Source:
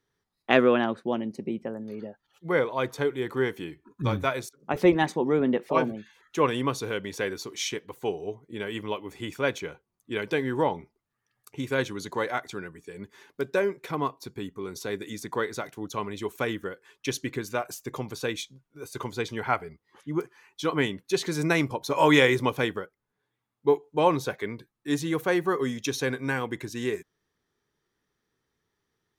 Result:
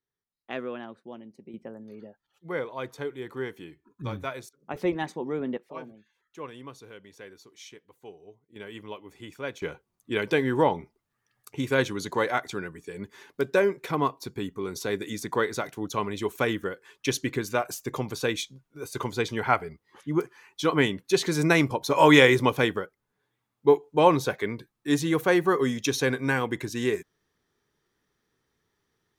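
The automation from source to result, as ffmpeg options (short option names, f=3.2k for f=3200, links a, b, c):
-af "asetnsamples=n=441:p=0,asendcmd='1.54 volume volume -7dB;5.57 volume volume -16dB;8.56 volume volume -8dB;9.62 volume volume 3dB',volume=-14.5dB"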